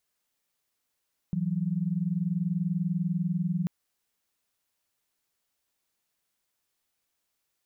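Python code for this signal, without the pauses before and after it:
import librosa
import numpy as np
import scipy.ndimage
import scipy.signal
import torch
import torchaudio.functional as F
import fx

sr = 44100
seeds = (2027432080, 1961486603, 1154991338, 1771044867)

y = fx.chord(sr, length_s=2.34, notes=(52, 54), wave='sine', level_db=-28.5)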